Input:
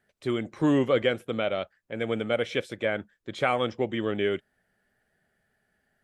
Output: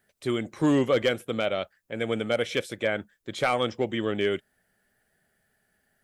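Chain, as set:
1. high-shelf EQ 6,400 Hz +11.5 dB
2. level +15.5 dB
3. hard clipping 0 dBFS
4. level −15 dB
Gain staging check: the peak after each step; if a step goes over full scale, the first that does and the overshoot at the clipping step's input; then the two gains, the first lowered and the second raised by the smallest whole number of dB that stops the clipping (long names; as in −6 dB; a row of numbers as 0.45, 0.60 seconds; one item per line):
−9.5, +6.0, 0.0, −15.0 dBFS
step 2, 6.0 dB
step 2 +9.5 dB, step 4 −9 dB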